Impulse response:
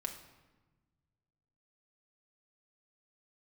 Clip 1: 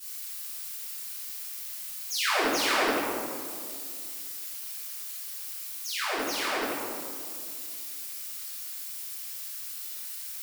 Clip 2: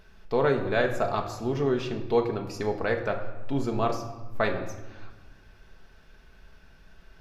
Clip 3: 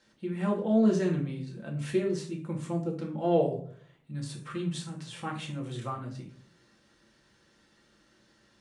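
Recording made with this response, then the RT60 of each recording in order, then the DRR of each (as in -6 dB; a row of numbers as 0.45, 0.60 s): 2; 2.2, 1.2, 0.50 s; -18.0, 2.5, -1.5 dB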